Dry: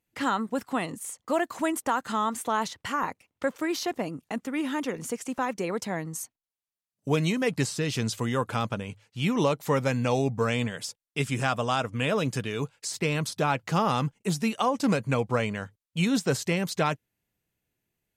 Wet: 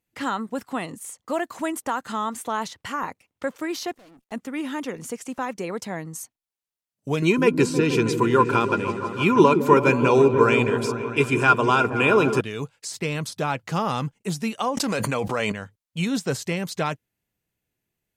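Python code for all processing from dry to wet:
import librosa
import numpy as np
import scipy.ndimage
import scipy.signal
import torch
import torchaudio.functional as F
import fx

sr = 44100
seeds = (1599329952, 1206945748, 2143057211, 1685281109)

y = fx.chain(x, sr, fx.law_mismatch(coded='A'),
    fx.low_shelf(hz=150.0, db=-8.5),
    fx.tube_stage(drive_db=49.0, bias=0.45), at=(3.92, 4.32))
y = fx.chain(y, sr, fx.small_body(hz=(370.0, 1000.0, 1400.0, 2400.0), ring_ms=35, db=17),
    fx.echo_opening(ms=160, hz=400, octaves=1, feedback_pct=70, wet_db=-6), at=(7.22, 12.41))
y = fx.chain(y, sr, fx.highpass(hz=410.0, slope=6),
    fx.notch(hz=2200.0, q=29.0),
    fx.env_flatten(amount_pct=100), at=(14.77, 15.52))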